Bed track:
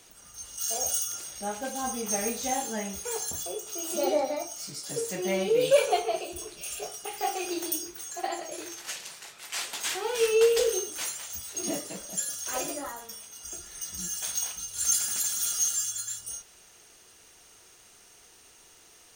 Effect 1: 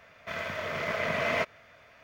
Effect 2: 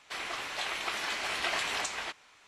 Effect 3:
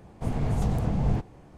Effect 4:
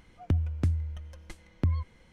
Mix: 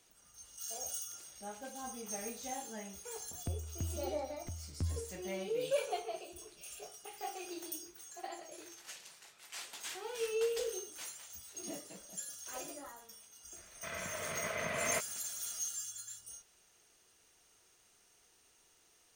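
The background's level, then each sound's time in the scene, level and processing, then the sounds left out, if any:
bed track -12.5 dB
3.17 s: add 4 -13 dB + delay 1012 ms -6 dB
13.56 s: add 1 -8 dB
not used: 2, 3

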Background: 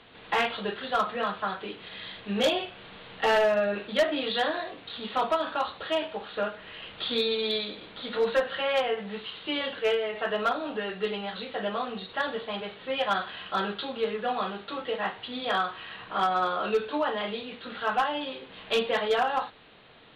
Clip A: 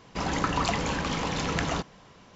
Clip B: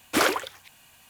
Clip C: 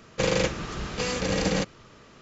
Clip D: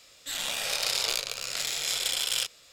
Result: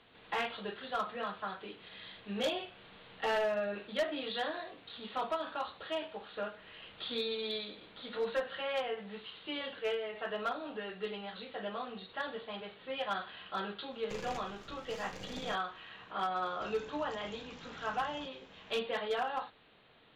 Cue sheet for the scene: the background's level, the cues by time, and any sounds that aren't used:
background -9 dB
13.91 s: add C -17 dB + partial rectifier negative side -12 dB
16.46 s: add A -11 dB + compression, threshold -39 dBFS
not used: B, D

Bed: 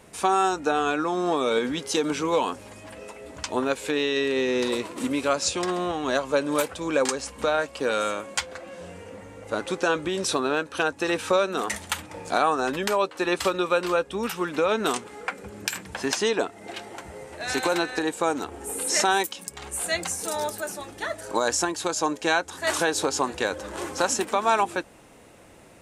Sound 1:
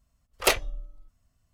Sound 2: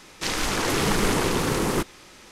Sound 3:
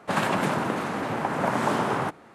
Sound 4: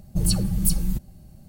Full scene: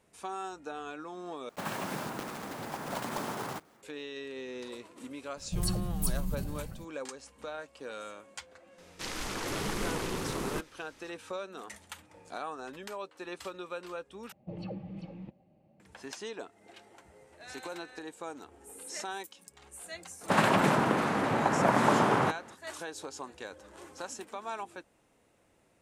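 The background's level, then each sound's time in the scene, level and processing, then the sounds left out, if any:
bed -17 dB
1.49 s: replace with 3 -12 dB + block-companded coder 3-bit
5.37 s: add 4 -10.5 dB + decay stretcher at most 29 dB/s
8.78 s: add 2 -11.5 dB
14.32 s: replace with 4 -11 dB + cabinet simulation 210–2700 Hz, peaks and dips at 320 Hz +4 dB, 540 Hz +10 dB, 800 Hz +6 dB, 1.5 kHz -8 dB, 2.5 kHz +5 dB
20.21 s: add 3 + loudspeaker Doppler distortion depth 0.14 ms
not used: 1

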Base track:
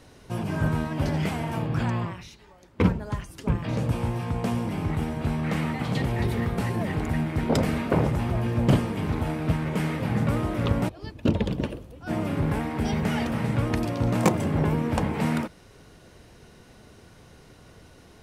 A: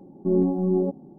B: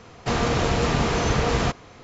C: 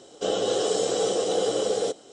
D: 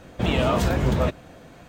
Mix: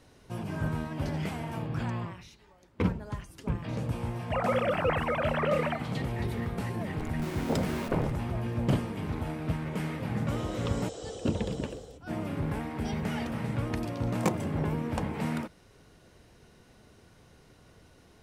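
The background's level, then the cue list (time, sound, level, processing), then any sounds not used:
base track -6.5 dB
4.05 s: add B -7.5 dB + formants replaced by sine waves
6.97 s: add A -13.5 dB + Schmitt trigger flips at -38.5 dBFS
10.06 s: add C -16.5 dB + fade out at the end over 0.70 s
not used: D

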